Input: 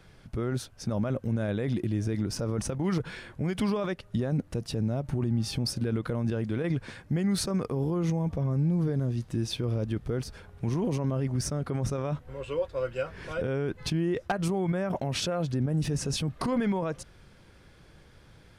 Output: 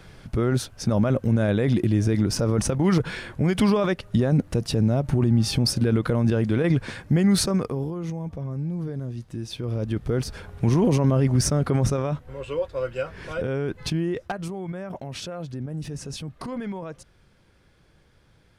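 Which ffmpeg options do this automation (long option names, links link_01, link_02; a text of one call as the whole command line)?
ffmpeg -i in.wav -af "volume=20dB,afade=type=out:start_time=7.36:duration=0.58:silence=0.281838,afade=type=in:start_time=9.49:duration=1.01:silence=0.251189,afade=type=out:start_time=11.76:duration=0.42:silence=0.501187,afade=type=out:start_time=13.95:duration=0.55:silence=0.421697" out.wav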